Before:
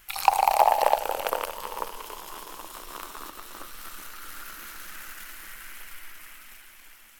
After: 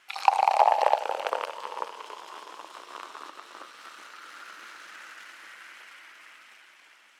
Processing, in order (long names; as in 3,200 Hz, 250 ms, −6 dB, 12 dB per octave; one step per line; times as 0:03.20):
high-pass filter 400 Hz 12 dB per octave
high-frequency loss of the air 100 metres